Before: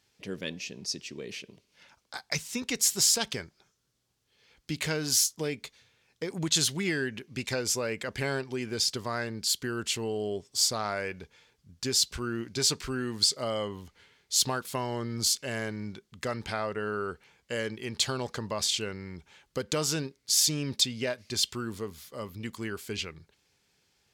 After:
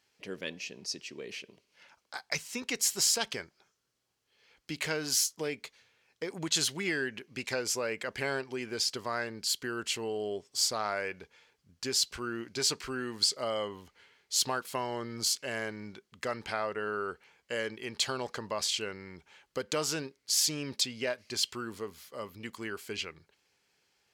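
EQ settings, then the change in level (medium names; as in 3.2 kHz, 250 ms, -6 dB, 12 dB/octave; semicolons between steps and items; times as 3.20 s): tone controls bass -4 dB, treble -4 dB; bass shelf 240 Hz -7 dB; band-stop 3.6 kHz, Q 18; 0.0 dB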